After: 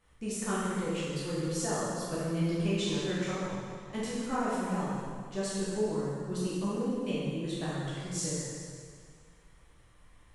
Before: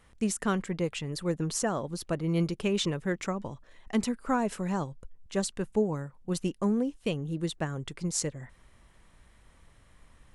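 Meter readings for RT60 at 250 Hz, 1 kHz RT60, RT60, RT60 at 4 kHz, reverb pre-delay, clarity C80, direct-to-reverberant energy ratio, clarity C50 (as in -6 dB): 2.0 s, 2.0 s, 2.0 s, 1.9 s, 5 ms, -1.0 dB, -9.5 dB, -3.5 dB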